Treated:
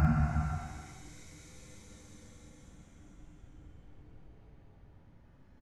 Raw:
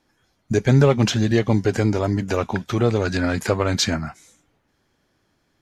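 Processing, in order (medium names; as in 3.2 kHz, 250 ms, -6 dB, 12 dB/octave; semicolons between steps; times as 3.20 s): RIAA curve playback; Paulstretch 10×, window 0.25 s, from 4.11 s; treble shelf 6.2 kHz +4.5 dB; doubling 47 ms -10.5 dB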